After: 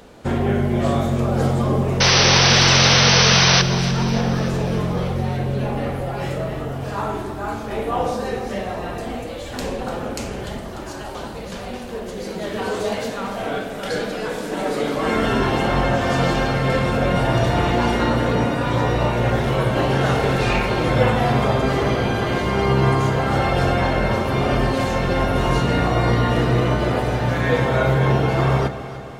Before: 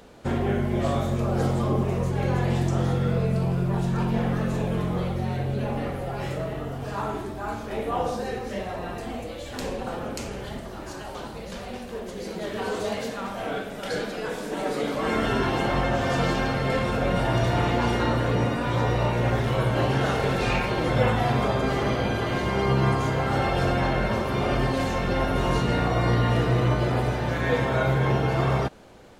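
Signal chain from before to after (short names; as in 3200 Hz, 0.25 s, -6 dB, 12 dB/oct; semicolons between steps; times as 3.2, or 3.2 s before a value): painted sound noise, 2–3.62, 400–6200 Hz -20 dBFS; echo with dull and thin repeats by turns 0.148 s, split 810 Hz, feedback 74%, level -10.5 dB; gain +4.5 dB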